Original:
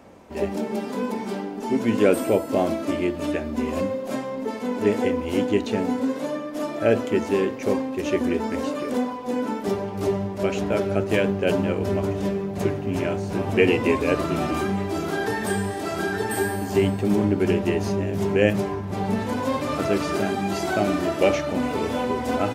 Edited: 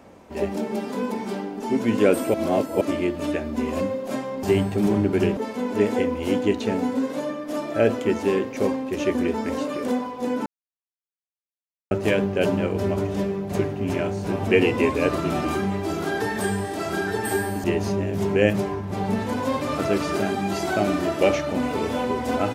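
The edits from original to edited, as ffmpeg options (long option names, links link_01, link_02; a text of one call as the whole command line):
ffmpeg -i in.wav -filter_complex "[0:a]asplit=8[link_01][link_02][link_03][link_04][link_05][link_06][link_07][link_08];[link_01]atrim=end=2.342[link_09];[link_02]atrim=start=2.338:end=2.812,asetpts=PTS-STARTPTS,areverse[link_10];[link_03]atrim=start=2.808:end=4.432[link_11];[link_04]atrim=start=16.698:end=17.642[link_12];[link_05]atrim=start=4.428:end=9.52,asetpts=PTS-STARTPTS,afade=type=out:start_time=5.088:duration=0.004:curve=hsin[link_13];[link_06]atrim=start=9.52:end=10.97,asetpts=PTS-STARTPTS,volume=0[link_14];[link_07]atrim=start=10.97:end=16.702,asetpts=PTS-STARTPTS,afade=type=in:duration=0.004:curve=hsin[link_15];[link_08]atrim=start=17.638[link_16];[link_09][link_10]acrossfade=duration=0.004:curve1=hsin:curve2=hsin[link_17];[link_17][link_11]acrossfade=duration=0.004:curve1=hsin:curve2=hsin[link_18];[link_18][link_12]acrossfade=duration=0.004:curve1=hsin:curve2=hsin[link_19];[link_13][link_14][link_15]concat=n=3:v=0:a=1[link_20];[link_19][link_20]acrossfade=duration=0.004:curve1=hsin:curve2=hsin[link_21];[link_21][link_16]acrossfade=duration=0.004:curve1=hsin:curve2=hsin" out.wav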